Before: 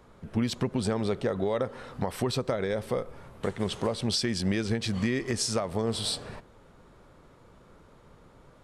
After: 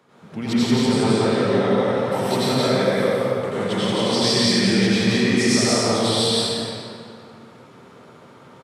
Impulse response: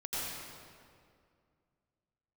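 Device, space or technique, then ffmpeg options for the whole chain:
stadium PA: -filter_complex "[0:a]highpass=frequency=130:width=0.5412,highpass=frequency=130:width=1.3066,equalizer=frequency=2900:width_type=o:width=2.1:gain=4,aecho=1:1:174.9|227.4:0.891|0.282[link_01];[1:a]atrim=start_sample=2205[link_02];[link_01][link_02]afir=irnorm=-1:irlink=0,volume=3dB"

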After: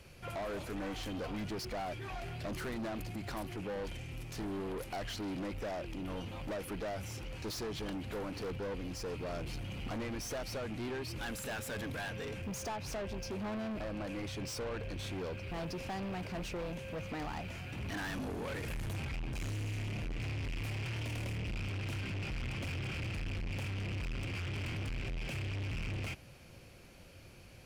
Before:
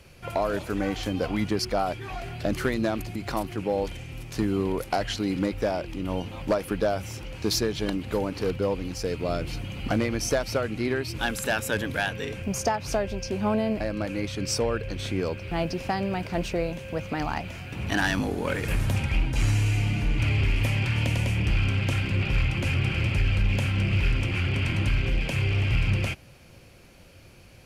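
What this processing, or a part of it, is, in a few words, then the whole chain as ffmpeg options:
saturation between pre-emphasis and de-emphasis: -af "highshelf=frequency=3900:gain=6.5,asoftclip=type=tanh:threshold=-32dB,highshelf=frequency=3900:gain=-6.5,volume=-4dB"

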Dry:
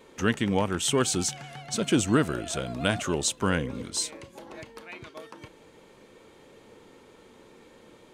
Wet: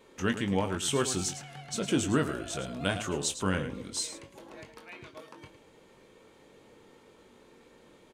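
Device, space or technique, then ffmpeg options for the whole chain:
slapback doubling: -filter_complex "[0:a]asplit=3[link_01][link_02][link_03];[link_02]adelay=21,volume=-7.5dB[link_04];[link_03]adelay=108,volume=-11dB[link_05];[link_01][link_04][link_05]amix=inputs=3:normalize=0,volume=-5dB"

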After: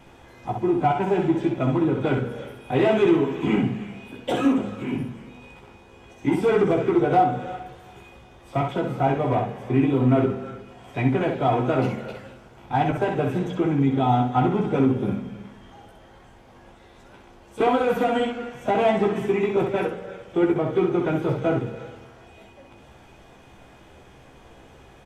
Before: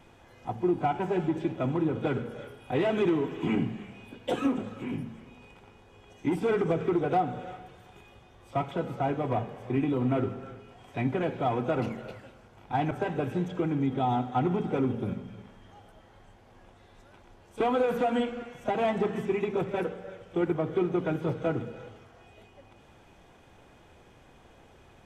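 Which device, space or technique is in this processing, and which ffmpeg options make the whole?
slapback doubling: -filter_complex "[0:a]asplit=3[link_01][link_02][link_03];[link_02]adelay=15,volume=-4.5dB[link_04];[link_03]adelay=64,volume=-5dB[link_05];[link_01][link_04][link_05]amix=inputs=3:normalize=0,volume=4.5dB"

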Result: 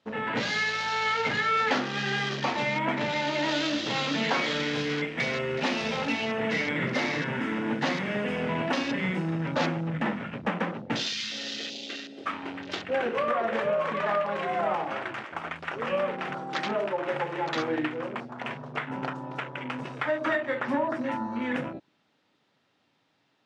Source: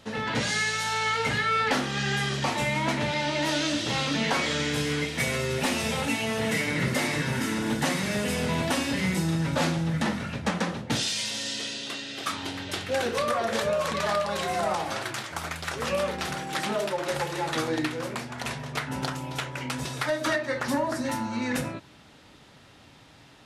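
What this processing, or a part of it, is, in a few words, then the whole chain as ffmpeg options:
over-cleaned archive recording: -af "highpass=180,lowpass=5500,afwtdn=0.0158"

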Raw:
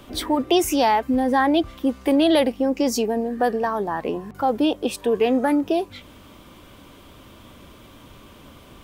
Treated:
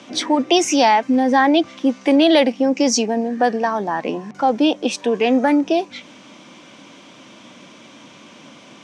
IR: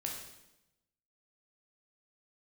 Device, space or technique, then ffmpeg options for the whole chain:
television speaker: -af "highpass=frequency=170:width=0.5412,highpass=frequency=170:width=1.3066,equalizer=frequency=410:width_type=q:width=4:gain=-7,equalizer=frequency=1200:width_type=q:width=4:gain=-4,equalizer=frequency=2300:width_type=q:width=4:gain=4,equalizer=frequency=5900:width_type=q:width=4:gain=8,lowpass=frequency=7500:width=0.5412,lowpass=frequency=7500:width=1.3066,volume=5dB"

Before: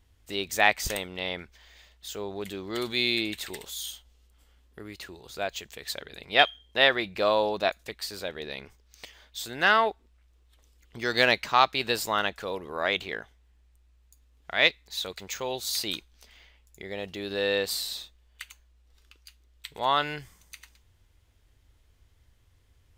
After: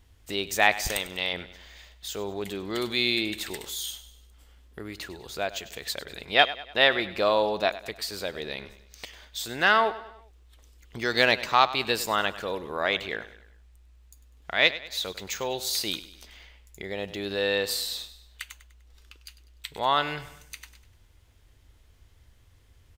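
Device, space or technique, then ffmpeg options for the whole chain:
parallel compression: -filter_complex "[0:a]asettb=1/sr,asplit=3[link_01][link_02][link_03];[link_01]atrim=end=0.924[link_04];[link_02]atrim=start=0.92:end=1.33,asetpts=PTS-STARTPTS,afade=type=in:duration=0.004:curve=qsin,afade=type=out:start_time=0.406:duration=0.004:curve=qsin,tiltshelf=frequency=970:gain=-4.5[link_05];[link_03]atrim=start=1.326[link_06];[link_04][link_05]acrossfade=duration=0.004:curve1=hsin:curve2=qsin[link_07];[link_07][link_06]acrossfade=duration=0.004:curve1=qsin:curve2=hsin,aecho=1:1:99|198|297|396:0.158|0.0682|0.0293|0.0126,asplit=2[link_08][link_09];[link_09]acompressor=threshold=-41dB:ratio=6,volume=-2.5dB[link_10];[link_08][link_10]amix=inputs=2:normalize=0"

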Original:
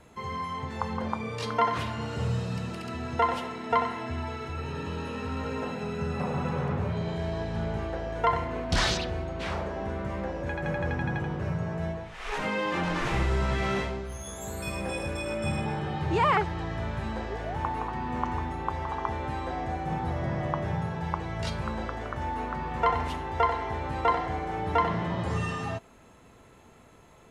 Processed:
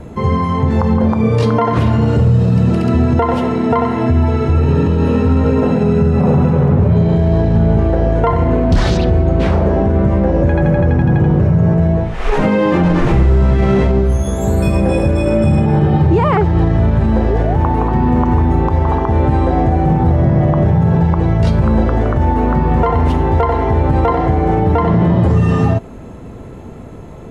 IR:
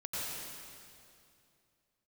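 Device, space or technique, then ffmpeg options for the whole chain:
mastering chain: -af "equalizer=frequency=1000:width_type=o:width=0.77:gain=-1.5,acompressor=threshold=-31dB:ratio=2,tiltshelf=frequency=870:gain=9,asoftclip=type=hard:threshold=-17dB,alimiter=level_in=20.5dB:limit=-1dB:release=50:level=0:latency=1,volume=-3.5dB"

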